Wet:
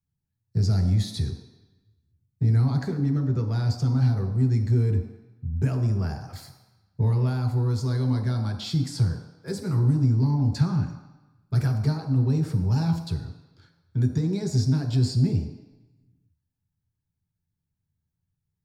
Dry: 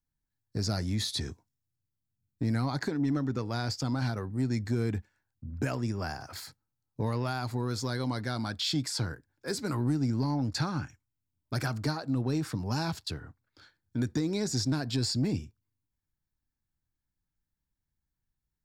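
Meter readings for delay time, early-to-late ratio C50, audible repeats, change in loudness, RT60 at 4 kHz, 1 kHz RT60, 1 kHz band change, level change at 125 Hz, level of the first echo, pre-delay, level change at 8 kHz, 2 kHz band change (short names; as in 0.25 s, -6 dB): none, 7.0 dB, none, +7.0 dB, 1.0 s, 1.1 s, -2.0 dB, +11.0 dB, none, 3 ms, n/a, -4.5 dB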